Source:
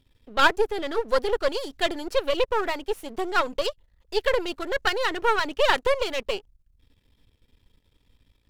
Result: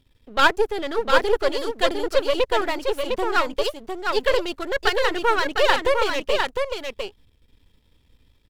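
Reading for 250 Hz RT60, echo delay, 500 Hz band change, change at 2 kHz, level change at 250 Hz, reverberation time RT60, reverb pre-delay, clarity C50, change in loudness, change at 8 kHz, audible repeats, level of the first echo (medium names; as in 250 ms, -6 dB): no reverb, 705 ms, +3.5 dB, +3.5 dB, +3.5 dB, no reverb, no reverb, no reverb, +3.0 dB, +3.5 dB, 1, -4.5 dB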